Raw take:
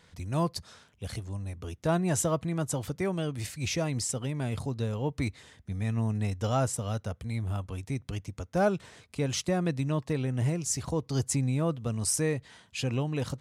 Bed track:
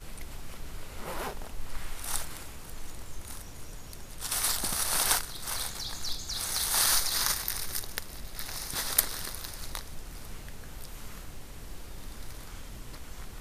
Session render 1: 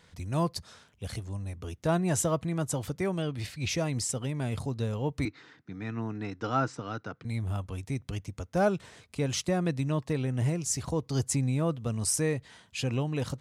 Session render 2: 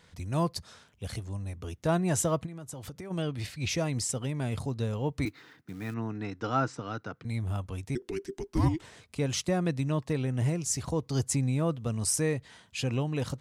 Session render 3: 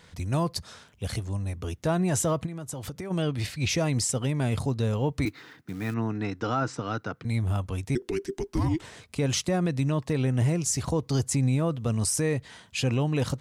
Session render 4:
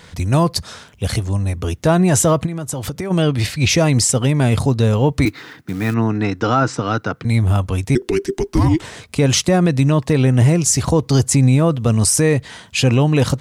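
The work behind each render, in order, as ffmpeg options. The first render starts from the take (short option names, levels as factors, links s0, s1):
-filter_complex "[0:a]asettb=1/sr,asplit=3[s0][s1][s2];[s0]atrim=end=3.224[s3];[s1]atrim=start=3.22:end=3.69,asetpts=PTS-STARTPTS,afade=t=in:d=0.004:c=qsin,afade=t=out:st=0.466:d=0.004:c=qsin,highshelf=f=5500:t=q:w=1.5:g=-6.5[s4];[s2]atrim=start=3.686[s5];[s3][s4]acrossfade=d=0.004:c1=hsin:c2=qsin[s6];[s6][s5]acrossfade=d=0.004:c1=qsin:c2=hsin,asettb=1/sr,asplit=3[s7][s8][s9];[s7]atrim=end=5.254[s10];[s8]atrim=start=5.25:end=7.25,asetpts=PTS-STARTPTS,afade=t=in:d=0.004:c=qsin,afade=t=out:st=1.996:d=0.004:c=qsin,highpass=f=140:w=0.5412,highpass=f=140:w=1.3066,equalizer=f=210:t=q:w=4:g=-6,equalizer=f=310:t=q:w=4:g=9,equalizer=f=590:t=q:w=4:g=-8,equalizer=f=1400:t=q:w=4:g=8,equalizer=f=3200:t=q:w=4:g=-6,lowpass=f=5000:w=0.5412,lowpass=f=5000:w=1.3066[s11];[s9]atrim=start=7.246[s12];[s10][s11]acrossfade=d=0.004:c1=hsin:c2=qsin[s13];[s13][s12]acrossfade=d=0.004:c1=qsin:c2=hsin"
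-filter_complex "[0:a]asplit=3[s0][s1][s2];[s0]afade=t=out:st=2.45:d=0.02[s3];[s1]acompressor=threshold=0.0141:ratio=16:attack=3.2:release=140:knee=1:detection=peak,afade=t=in:st=2.45:d=0.02,afade=t=out:st=3.1:d=0.02[s4];[s2]afade=t=in:st=3.1:d=0.02[s5];[s3][s4][s5]amix=inputs=3:normalize=0,asettb=1/sr,asplit=3[s6][s7][s8];[s6]atrim=end=5.264[s9];[s7]atrim=start=5.26:end=5.94,asetpts=PTS-STARTPTS,afade=t=in:d=0.004:c=qsin,afade=t=out:st=0.676:d=0.004:c=qsin,acrusher=bits=5:mode=log:mix=0:aa=0.000001[s10];[s8]atrim=start=5.936[s11];[s9][s10]acrossfade=d=0.004:c1=hsin:c2=qsin[s12];[s12][s11]acrossfade=d=0.004:c1=qsin:c2=hsin,asettb=1/sr,asplit=3[s13][s14][s15];[s13]atrim=end=7.954[s16];[s14]atrim=start=7.95:end=8.82,asetpts=PTS-STARTPTS,afade=t=in:d=0.004:c=qsin,afade=t=out:st=0.866:d=0.004:c=qsin,afreqshift=-490[s17];[s15]atrim=start=8.816[s18];[s16][s17]acrossfade=d=0.004:c1=hsin:c2=qsin[s19];[s19][s18]acrossfade=d=0.004:c1=qsin:c2=hsin"
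-af "acontrast=38,alimiter=limit=0.133:level=0:latency=1:release=50"
-af "volume=3.76"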